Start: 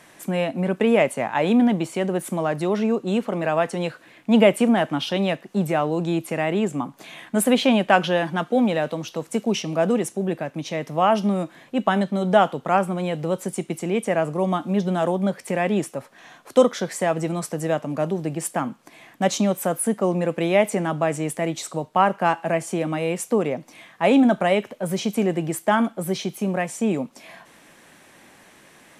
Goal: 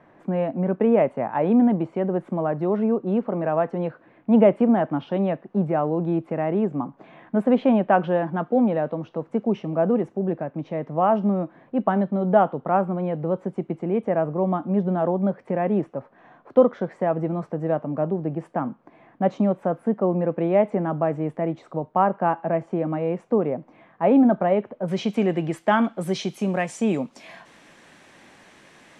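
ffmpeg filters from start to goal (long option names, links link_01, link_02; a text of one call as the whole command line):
ffmpeg -i in.wav -af "asetnsamples=nb_out_samples=441:pad=0,asendcmd='24.88 lowpass f 3600;26.01 lowpass f 6700',lowpass=1100" out.wav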